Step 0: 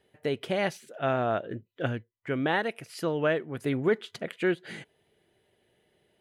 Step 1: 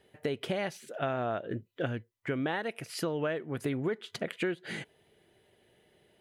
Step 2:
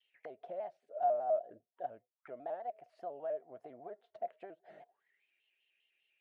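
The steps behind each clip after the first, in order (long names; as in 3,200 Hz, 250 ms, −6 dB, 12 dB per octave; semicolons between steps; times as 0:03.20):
downward compressor 5 to 1, threshold −33 dBFS, peak gain reduction 12.5 dB; level +3.5 dB
envelope filter 670–2,900 Hz, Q 18, down, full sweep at −39 dBFS; pitch modulation by a square or saw wave square 5 Hz, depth 100 cents; level +6.5 dB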